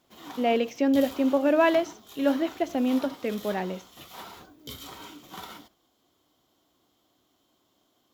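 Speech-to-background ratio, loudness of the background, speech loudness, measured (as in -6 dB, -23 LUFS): 18.0 dB, -43.5 LUFS, -25.5 LUFS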